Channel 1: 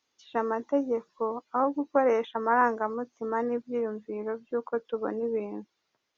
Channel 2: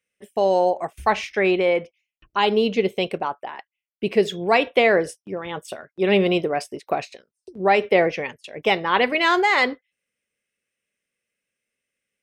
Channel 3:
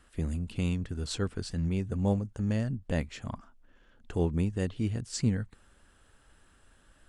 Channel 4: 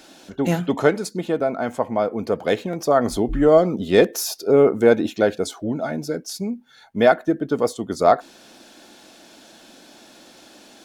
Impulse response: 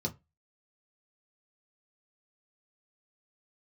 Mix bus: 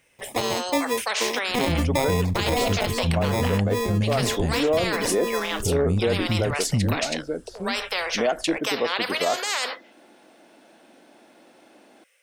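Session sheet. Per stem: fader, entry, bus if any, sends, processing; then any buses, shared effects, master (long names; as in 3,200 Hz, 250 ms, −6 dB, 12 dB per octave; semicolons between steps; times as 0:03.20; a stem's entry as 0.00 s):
+2.5 dB, 0.00 s, no send, high-shelf EQ 3,600 Hz +11 dB; decimation without filtering 30×
−3.5 dB, 0.00 s, no send, elliptic high-pass filter 500 Hz; every bin compressed towards the loudest bin 4 to 1
0.0 dB, 1.50 s, no send, bass and treble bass +10 dB, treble +9 dB
−2.5 dB, 1.20 s, no send, resonant band-pass 560 Hz, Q 0.53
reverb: not used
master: brickwall limiter −13.5 dBFS, peak gain reduction 9.5 dB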